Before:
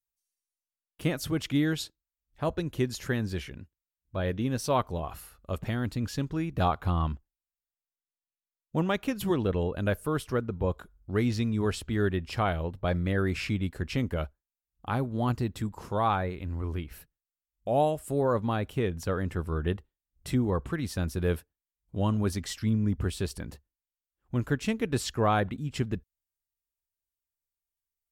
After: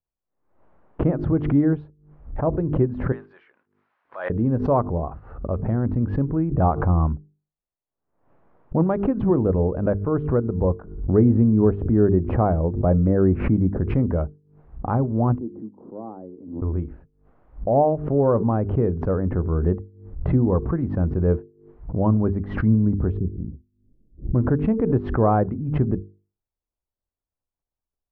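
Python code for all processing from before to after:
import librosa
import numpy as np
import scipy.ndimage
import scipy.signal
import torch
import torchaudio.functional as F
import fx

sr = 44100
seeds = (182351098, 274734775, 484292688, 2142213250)

y = fx.chain(x, sr, fx.block_float(bits=5),
    fx.highpass(hz=1400.0, slope=12),
    fx.tilt_eq(slope=2.5), at=(3.12, 4.3))
y = fx.chain(y, sr, fx.lowpass(hz=1700.0, slope=6),
    fx.peak_eq(hz=280.0, db=3.5, octaves=2.6), at=(11.13, 13.81))
y = fx.chain(y, sr, fx.ladder_bandpass(hz=320.0, resonance_pct=50),
    fx.band_widen(depth_pct=40), at=(15.38, 16.62))
y = fx.chain(y, sr, fx.block_float(bits=3),
    fx.cheby2_lowpass(hz=1400.0, order=4, stop_db=70), at=(23.17, 24.35))
y = scipy.signal.sosfilt(scipy.signal.bessel(4, 750.0, 'lowpass', norm='mag', fs=sr, output='sos'), y)
y = fx.hum_notches(y, sr, base_hz=50, count=9)
y = fx.pre_swell(y, sr, db_per_s=84.0)
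y = y * librosa.db_to_amplitude(9.0)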